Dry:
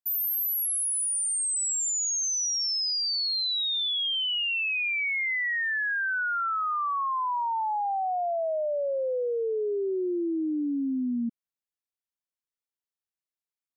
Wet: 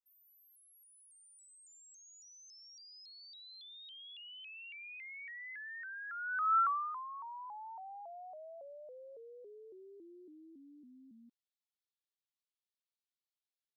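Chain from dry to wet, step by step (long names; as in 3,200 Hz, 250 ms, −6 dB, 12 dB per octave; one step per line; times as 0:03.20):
band-pass filter sweep 440 Hz → 3,800 Hz, 0:06.07–0:07.07
pitch modulation by a square or saw wave saw up 3.6 Hz, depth 160 cents
level +1 dB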